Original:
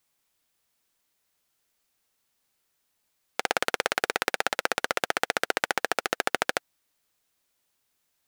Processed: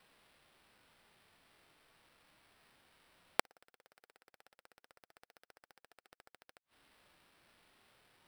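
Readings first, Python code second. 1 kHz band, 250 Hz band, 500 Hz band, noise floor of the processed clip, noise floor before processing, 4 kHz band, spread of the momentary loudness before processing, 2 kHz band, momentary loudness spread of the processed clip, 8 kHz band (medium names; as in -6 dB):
-19.5 dB, -19.0 dB, -20.5 dB, under -85 dBFS, -76 dBFS, -21.5 dB, 3 LU, -23.0 dB, 0 LU, -20.0 dB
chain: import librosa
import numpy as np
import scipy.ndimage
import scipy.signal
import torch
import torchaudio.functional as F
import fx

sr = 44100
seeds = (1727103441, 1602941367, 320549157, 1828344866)

y = fx.gate_flip(x, sr, shuts_db=-10.0, range_db=-42)
y = fx.sample_hold(y, sr, seeds[0], rate_hz=6700.0, jitter_pct=0)
y = fx.hpss(y, sr, part='percussive', gain_db=-8)
y = F.gain(torch.from_numpy(y), 9.0).numpy()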